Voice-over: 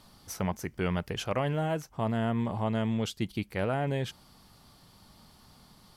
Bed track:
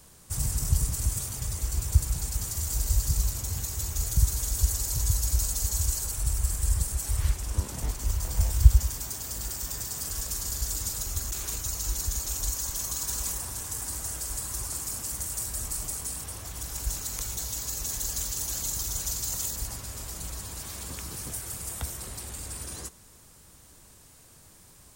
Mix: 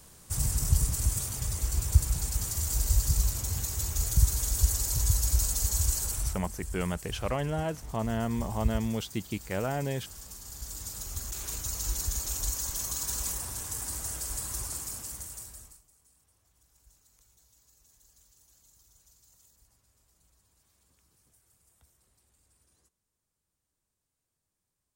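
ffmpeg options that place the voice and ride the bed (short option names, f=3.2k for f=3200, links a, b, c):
-filter_complex "[0:a]adelay=5950,volume=-1.5dB[a];[1:a]volume=11.5dB,afade=t=out:st=6.17:d=0.21:silence=0.223872,afade=t=in:st=10.44:d=1.41:silence=0.266073,afade=t=out:st=14.57:d=1.25:silence=0.0334965[b];[a][b]amix=inputs=2:normalize=0"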